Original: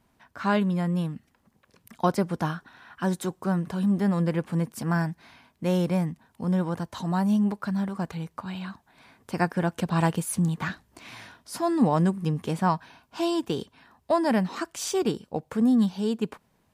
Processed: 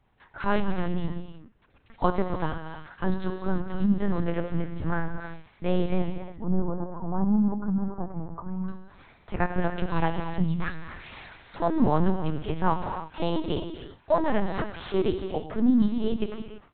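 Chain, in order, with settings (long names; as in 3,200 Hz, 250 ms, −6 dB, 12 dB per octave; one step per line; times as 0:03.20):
0:06.43–0:08.69: low-pass filter 1,100 Hz 24 dB per octave
reverb whose tail is shaped and stops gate 360 ms flat, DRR 5 dB
linear-prediction vocoder at 8 kHz pitch kept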